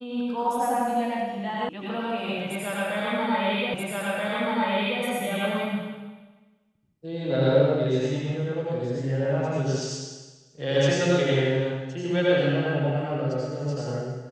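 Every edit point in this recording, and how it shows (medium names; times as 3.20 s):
1.69 s: sound stops dead
3.74 s: repeat of the last 1.28 s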